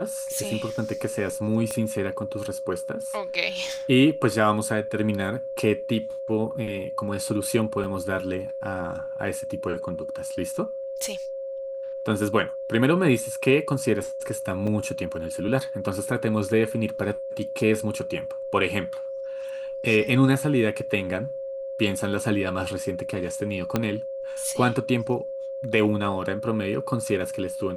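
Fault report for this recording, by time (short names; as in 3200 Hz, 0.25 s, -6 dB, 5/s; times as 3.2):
tone 540 Hz -30 dBFS
1.71 pop -16 dBFS
7.84 gap 3.7 ms
14.67 gap 4.8 ms
23.76 pop -9 dBFS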